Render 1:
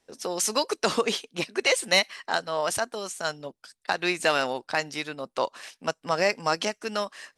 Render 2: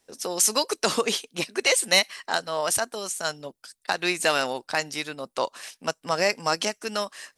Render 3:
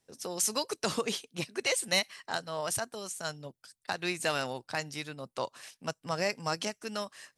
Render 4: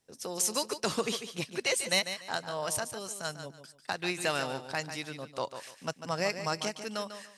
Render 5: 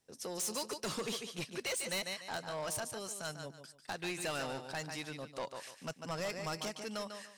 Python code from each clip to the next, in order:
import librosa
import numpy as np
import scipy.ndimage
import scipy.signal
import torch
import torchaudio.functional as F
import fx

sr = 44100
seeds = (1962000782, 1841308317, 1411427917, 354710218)

y1 = fx.high_shelf(x, sr, hz=6900.0, db=11.0)
y2 = fx.peak_eq(y1, sr, hz=120.0, db=12.5, octaves=1.2)
y2 = y2 * librosa.db_to_amplitude(-8.5)
y3 = fx.echo_feedback(y2, sr, ms=146, feedback_pct=25, wet_db=-10.0)
y4 = 10.0 ** (-31.0 / 20.0) * np.tanh(y3 / 10.0 ** (-31.0 / 20.0))
y4 = y4 * librosa.db_to_amplitude(-2.0)